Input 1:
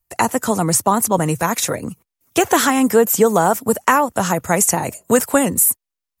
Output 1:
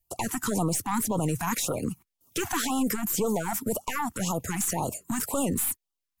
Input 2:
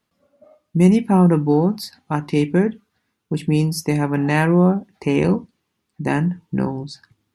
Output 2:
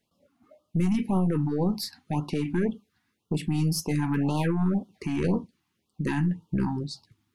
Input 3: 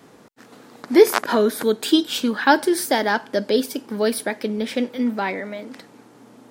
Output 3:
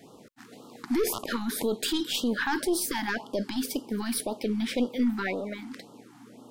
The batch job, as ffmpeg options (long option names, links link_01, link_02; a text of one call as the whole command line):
ffmpeg -i in.wav -af "aeval=exprs='(tanh(2.82*val(0)+0.5)-tanh(0.5))/2.82':channel_layout=same,alimiter=limit=-18dB:level=0:latency=1:release=23,afftfilt=real='re*(1-between(b*sr/1024,460*pow(2000/460,0.5+0.5*sin(2*PI*1.9*pts/sr))/1.41,460*pow(2000/460,0.5+0.5*sin(2*PI*1.9*pts/sr))*1.41))':imag='im*(1-between(b*sr/1024,460*pow(2000/460,0.5+0.5*sin(2*PI*1.9*pts/sr))/1.41,460*pow(2000/460,0.5+0.5*sin(2*PI*1.9*pts/sr))*1.41))':win_size=1024:overlap=0.75" out.wav